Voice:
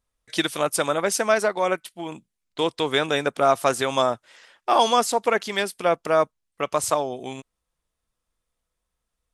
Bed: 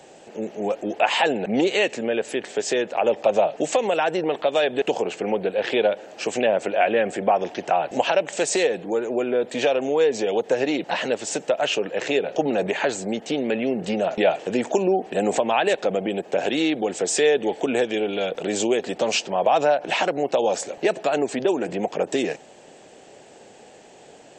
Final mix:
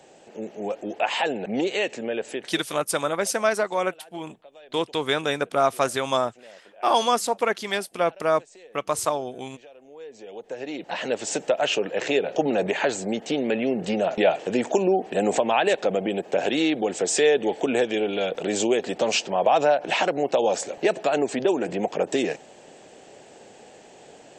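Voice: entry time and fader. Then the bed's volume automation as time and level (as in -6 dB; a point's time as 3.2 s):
2.15 s, -2.0 dB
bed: 2.35 s -4.5 dB
2.86 s -28 dB
9.72 s -28 dB
11.21 s -0.5 dB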